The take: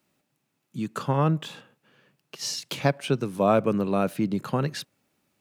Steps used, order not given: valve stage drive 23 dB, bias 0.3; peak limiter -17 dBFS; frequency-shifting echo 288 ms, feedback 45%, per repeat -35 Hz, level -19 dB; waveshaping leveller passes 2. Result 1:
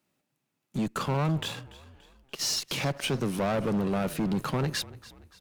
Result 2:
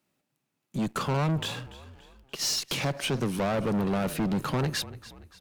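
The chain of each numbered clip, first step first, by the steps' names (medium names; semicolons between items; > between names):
waveshaping leveller > peak limiter > valve stage > frequency-shifting echo; peak limiter > waveshaping leveller > frequency-shifting echo > valve stage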